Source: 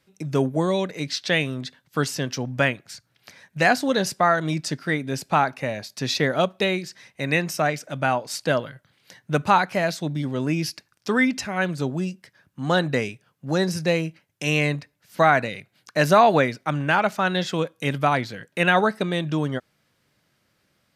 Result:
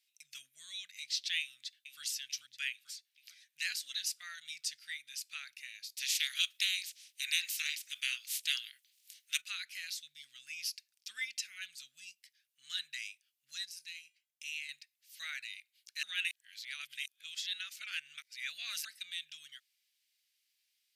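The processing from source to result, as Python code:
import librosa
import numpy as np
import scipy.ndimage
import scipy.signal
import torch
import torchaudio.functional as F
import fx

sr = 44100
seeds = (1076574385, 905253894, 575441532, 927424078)

y = fx.echo_throw(x, sr, start_s=1.41, length_s=0.61, ms=440, feedback_pct=55, wet_db=-8.5)
y = fx.spec_clip(y, sr, under_db=24, at=(5.97, 9.4), fade=0.02)
y = fx.comb_fb(y, sr, f0_hz=220.0, decay_s=0.57, harmonics='odd', damping=0.0, mix_pct=60, at=(13.65, 14.69))
y = fx.edit(y, sr, fx.reverse_span(start_s=16.03, length_s=2.82), tone=tone)
y = scipy.signal.sosfilt(scipy.signal.cheby2(4, 50, 950.0, 'highpass', fs=sr, output='sos'), y)
y = fx.high_shelf(y, sr, hz=12000.0, db=6.0)
y = y * librosa.db_to_amplitude(-7.0)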